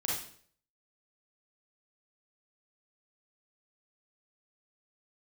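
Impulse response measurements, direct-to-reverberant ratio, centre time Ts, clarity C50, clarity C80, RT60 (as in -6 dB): -5.0 dB, 53 ms, -0.5 dB, 6.5 dB, 0.55 s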